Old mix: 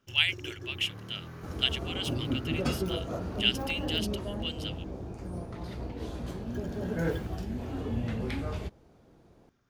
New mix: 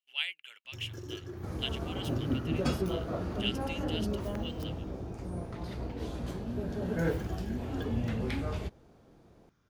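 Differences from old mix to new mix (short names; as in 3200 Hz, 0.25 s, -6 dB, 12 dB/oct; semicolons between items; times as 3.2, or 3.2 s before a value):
speech -8.5 dB; first sound: entry +0.65 s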